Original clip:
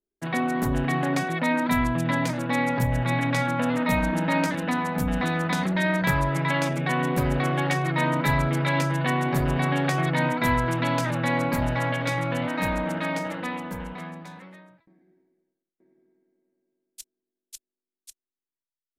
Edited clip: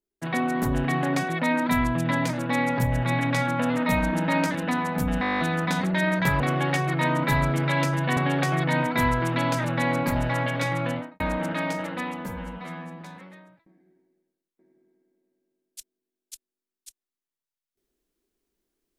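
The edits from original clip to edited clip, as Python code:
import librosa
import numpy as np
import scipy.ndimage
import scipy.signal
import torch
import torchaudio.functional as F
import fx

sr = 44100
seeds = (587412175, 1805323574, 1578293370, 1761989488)

y = fx.studio_fade_out(x, sr, start_s=12.31, length_s=0.35)
y = fx.edit(y, sr, fx.stutter(start_s=5.21, slice_s=0.02, count=10),
    fx.cut(start_s=6.22, length_s=1.15),
    fx.cut(start_s=9.14, length_s=0.49),
    fx.stretch_span(start_s=13.72, length_s=0.5, factor=1.5), tone=tone)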